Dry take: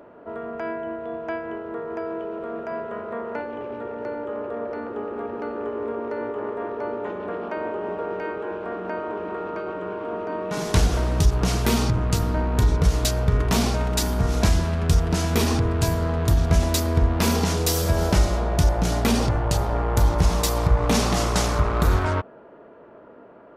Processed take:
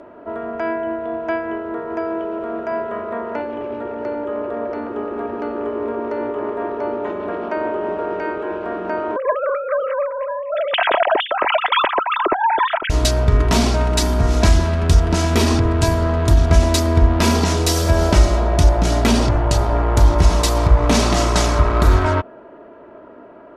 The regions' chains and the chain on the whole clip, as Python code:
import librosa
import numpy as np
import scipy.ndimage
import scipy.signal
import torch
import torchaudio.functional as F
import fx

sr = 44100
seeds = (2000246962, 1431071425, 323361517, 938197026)

y = fx.chain(x, sr, fx.sine_speech(),
    fx.over_compress(threshold_db=-23.0, ratio=-0.5), at=(9.16, 12.9))
y = scipy.signal.sosfilt(scipy.signal.bessel(8, 9000.0, 'lowpass', norm='mag', fs=sr, output='sos'), y)
y = y + 0.39 * np.pad(y, (int(3.1 * sr / 1000.0), 0))[:len(y)]
y = y * librosa.db_to_amplitude(5.0)